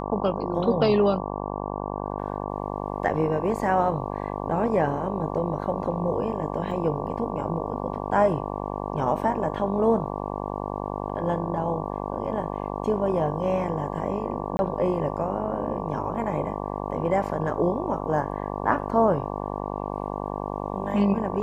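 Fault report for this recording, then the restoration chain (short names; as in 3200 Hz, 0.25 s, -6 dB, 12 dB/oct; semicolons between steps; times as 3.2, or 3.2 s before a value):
buzz 50 Hz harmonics 23 -31 dBFS
6.71 gap 4.2 ms
14.57–14.59 gap 21 ms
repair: de-hum 50 Hz, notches 23; interpolate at 6.71, 4.2 ms; interpolate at 14.57, 21 ms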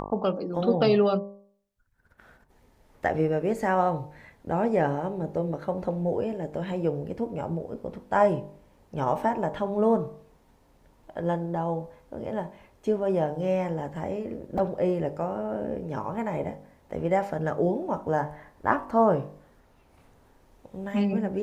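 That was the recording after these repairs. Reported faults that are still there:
none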